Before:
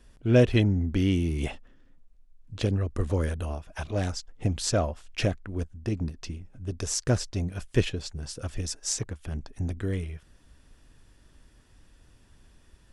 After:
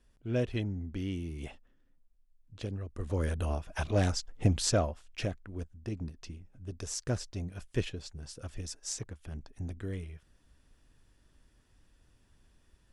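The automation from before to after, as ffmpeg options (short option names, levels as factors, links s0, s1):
-af "volume=1.12,afade=t=in:st=2.97:d=0.58:silence=0.237137,afade=t=out:st=4.49:d=0.56:silence=0.354813"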